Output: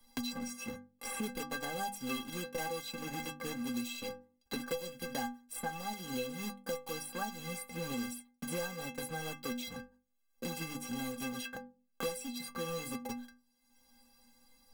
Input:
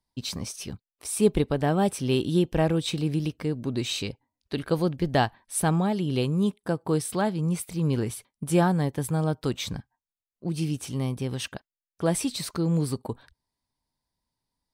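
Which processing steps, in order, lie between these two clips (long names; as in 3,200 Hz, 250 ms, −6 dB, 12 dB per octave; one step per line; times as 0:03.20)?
one scale factor per block 3 bits
mains-hum notches 50/100/150/200/250/300 Hz
stiff-string resonator 240 Hz, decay 0.35 s, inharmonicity 0.03
multiband upward and downward compressor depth 100%
level +2.5 dB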